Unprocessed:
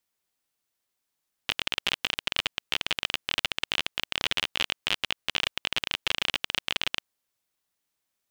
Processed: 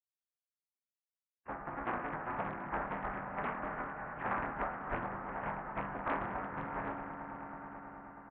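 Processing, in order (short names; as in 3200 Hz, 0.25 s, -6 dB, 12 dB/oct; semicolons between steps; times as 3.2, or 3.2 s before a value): per-bin expansion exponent 3; bell 400 Hz +13.5 dB 0.3 oct; resonator bank C3 minor, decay 0.7 s; inverted band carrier 3200 Hz; formant-preserving pitch shift -8.5 st; bell 1100 Hz +12.5 dB 0.89 oct; swelling echo 0.107 s, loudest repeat 5, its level -13.5 dB; harmoniser -5 st -7 dB, +5 st -14 dB; Doppler distortion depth 0.79 ms; gain +14 dB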